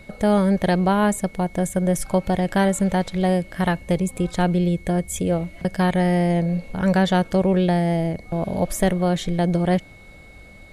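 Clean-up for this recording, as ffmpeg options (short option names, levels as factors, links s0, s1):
-af "bandreject=f=2200:w=30"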